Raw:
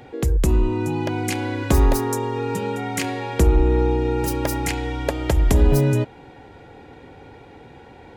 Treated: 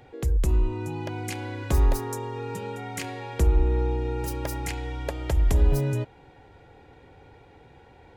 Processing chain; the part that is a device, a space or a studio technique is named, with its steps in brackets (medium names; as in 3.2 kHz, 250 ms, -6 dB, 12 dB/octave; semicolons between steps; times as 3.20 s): low shelf boost with a cut just above (bass shelf 91 Hz +6 dB; peaking EQ 240 Hz -5 dB 0.85 oct); trim -8 dB